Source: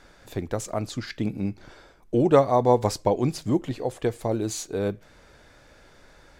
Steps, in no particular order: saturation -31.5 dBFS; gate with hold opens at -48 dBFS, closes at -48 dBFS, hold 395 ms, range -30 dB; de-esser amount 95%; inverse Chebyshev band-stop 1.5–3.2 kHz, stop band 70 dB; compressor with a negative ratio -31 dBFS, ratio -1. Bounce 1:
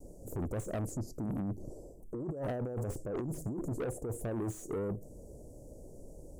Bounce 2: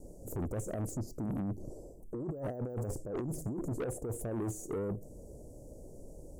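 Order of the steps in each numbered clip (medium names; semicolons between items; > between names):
gate with hold > inverse Chebyshev band-stop > compressor with a negative ratio > saturation > de-esser; de-esser > compressor with a negative ratio > gate with hold > inverse Chebyshev band-stop > saturation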